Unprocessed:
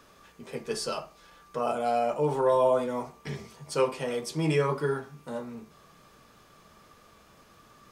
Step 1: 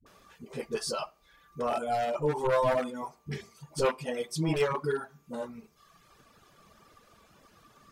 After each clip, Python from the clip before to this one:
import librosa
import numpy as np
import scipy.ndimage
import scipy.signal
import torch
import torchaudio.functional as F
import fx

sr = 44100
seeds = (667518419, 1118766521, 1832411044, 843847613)

y = np.minimum(x, 2.0 * 10.0 ** (-20.5 / 20.0) - x)
y = fx.dereverb_blind(y, sr, rt60_s=1.2)
y = fx.dispersion(y, sr, late='highs', ms=63.0, hz=370.0)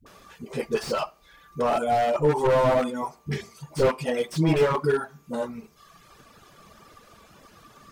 y = fx.slew_limit(x, sr, full_power_hz=37.0)
y = F.gain(torch.from_numpy(y), 7.5).numpy()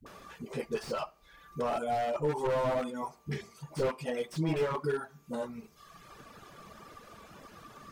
y = fx.band_squash(x, sr, depth_pct=40)
y = F.gain(torch.from_numpy(y), -8.5).numpy()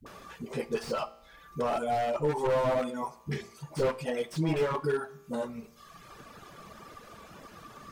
y = fx.comb_fb(x, sr, f0_hz=58.0, decay_s=0.83, harmonics='all', damping=0.0, mix_pct=40)
y = F.gain(torch.from_numpy(y), 6.0).numpy()